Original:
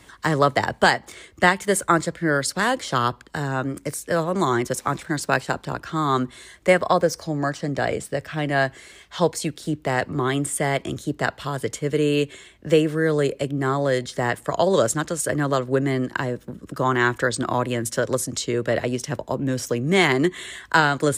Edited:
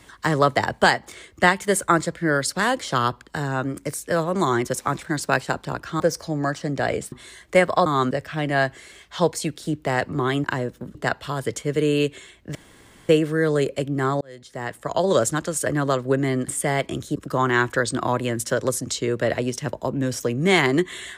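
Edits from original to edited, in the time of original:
6.00–6.25 s: swap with 6.99–8.11 s
10.44–11.12 s: swap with 16.11–16.62 s
12.72 s: insert room tone 0.54 s
13.84–14.82 s: fade in

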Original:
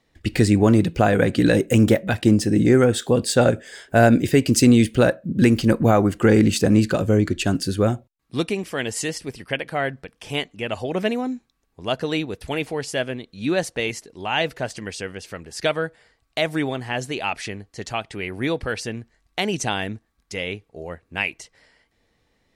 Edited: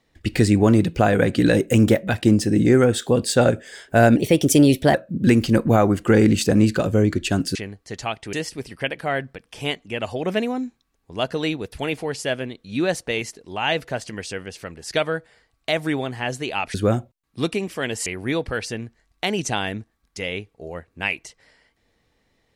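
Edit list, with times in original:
4.16–5.09 s: speed 119%
7.70–9.02 s: swap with 17.43–18.21 s

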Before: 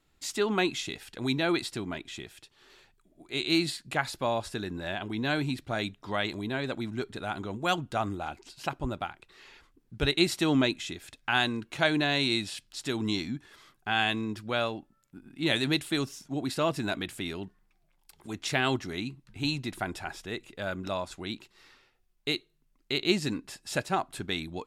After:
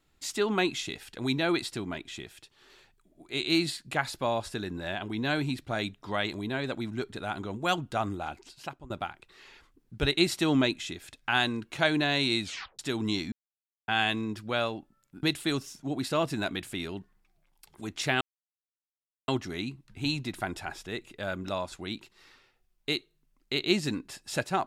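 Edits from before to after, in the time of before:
8.41–8.90 s: fade out, to -21 dB
12.44 s: tape stop 0.35 s
13.32–13.88 s: mute
15.23–15.69 s: delete
18.67 s: insert silence 1.07 s

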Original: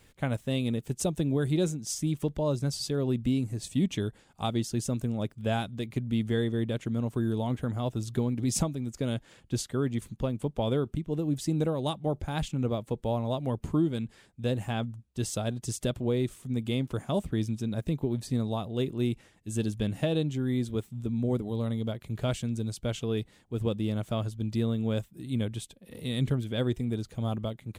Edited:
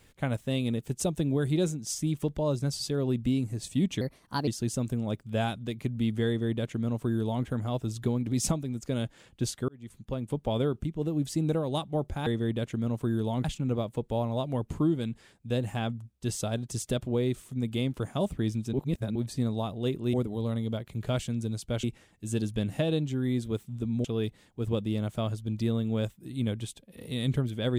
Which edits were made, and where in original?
4.01–4.59 s: speed 125%
6.39–7.57 s: copy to 12.38 s
9.80–10.48 s: fade in
17.67–18.09 s: reverse
21.28–22.98 s: move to 19.07 s

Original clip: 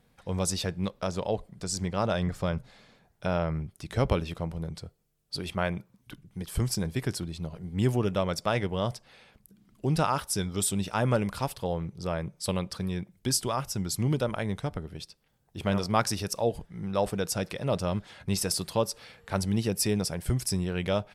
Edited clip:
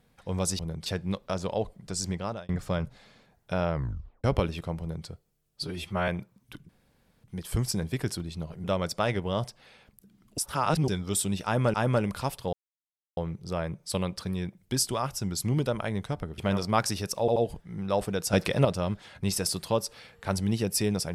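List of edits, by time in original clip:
1.83–2.22 s: fade out
3.47 s: tape stop 0.50 s
4.53–4.80 s: copy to 0.59 s
5.36–5.66 s: stretch 1.5×
6.27 s: insert room tone 0.55 s
7.67–8.11 s: delete
9.85–10.35 s: reverse
10.92–11.21 s: loop, 2 plays
11.71 s: insert silence 0.64 s
14.92–15.59 s: delete
16.41 s: stutter 0.08 s, 3 plays
17.38–17.70 s: gain +8 dB

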